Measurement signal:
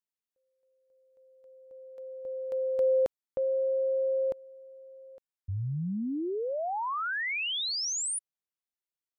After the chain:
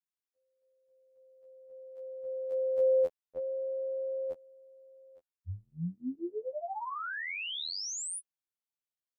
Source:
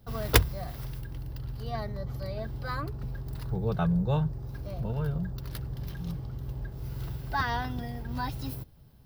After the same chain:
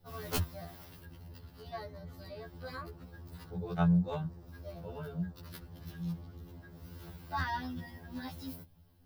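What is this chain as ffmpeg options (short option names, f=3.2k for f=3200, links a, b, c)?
-af "aeval=exprs='0.126*(abs(mod(val(0)/0.126+3,4)-2)-1)':c=same,afftfilt=real='re*2*eq(mod(b,4),0)':imag='im*2*eq(mod(b,4),0)':win_size=2048:overlap=0.75,volume=-3.5dB"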